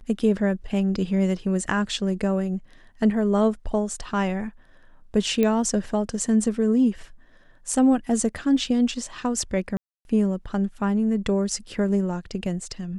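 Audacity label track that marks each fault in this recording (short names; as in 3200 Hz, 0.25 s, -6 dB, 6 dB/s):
5.430000	5.430000	pop -11 dBFS
9.770000	10.050000	gap 0.281 s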